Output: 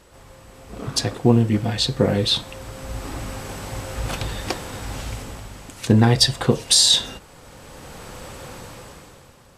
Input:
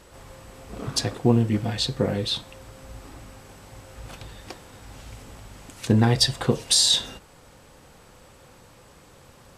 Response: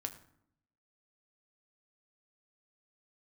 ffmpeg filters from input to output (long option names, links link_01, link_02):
-af "dynaudnorm=framelen=120:gausssize=13:maxgain=15dB,volume=-1dB"